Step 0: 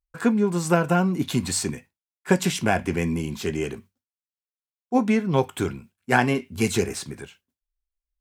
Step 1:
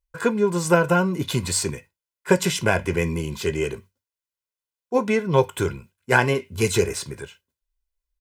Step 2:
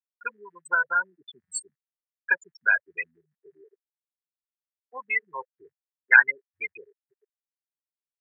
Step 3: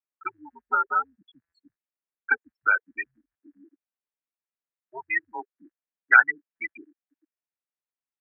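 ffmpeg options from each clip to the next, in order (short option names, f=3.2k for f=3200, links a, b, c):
-af "aecho=1:1:2:0.58,volume=1.5dB"
-af "afftfilt=real='re*gte(hypot(re,im),0.251)':imag='im*gte(hypot(re,im),0.251)':win_size=1024:overlap=0.75,highpass=f=1.8k:t=q:w=6.6,volume=-2dB"
-af "highpass=f=270:t=q:w=0.5412,highpass=f=270:t=q:w=1.307,lowpass=f=2.8k:t=q:w=0.5176,lowpass=f=2.8k:t=q:w=0.7071,lowpass=f=2.8k:t=q:w=1.932,afreqshift=-110"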